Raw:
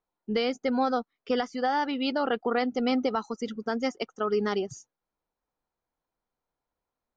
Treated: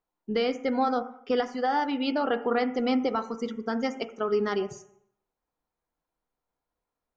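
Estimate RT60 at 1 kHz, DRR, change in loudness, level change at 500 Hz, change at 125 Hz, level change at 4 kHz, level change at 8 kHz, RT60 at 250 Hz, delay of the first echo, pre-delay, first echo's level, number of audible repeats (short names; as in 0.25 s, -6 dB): 0.70 s, 8.5 dB, +0.5 dB, +1.0 dB, -0.5 dB, -1.5 dB, n/a, 0.70 s, none, 3 ms, none, none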